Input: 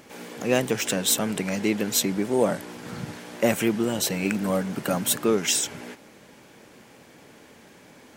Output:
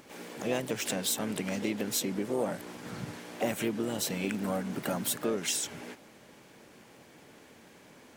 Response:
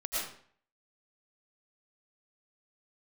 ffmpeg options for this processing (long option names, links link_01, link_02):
-filter_complex "[0:a]asplit=3[link_01][link_02][link_03];[link_02]asetrate=52444,aresample=44100,atempo=0.840896,volume=-13dB[link_04];[link_03]asetrate=58866,aresample=44100,atempo=0.749154,volume=-10dB[link_05];[link_01][link_04][link_05]amix=inputs=3:normalize=0,acompressor=threshold=-25dB:ratio=2,volume=-5dB"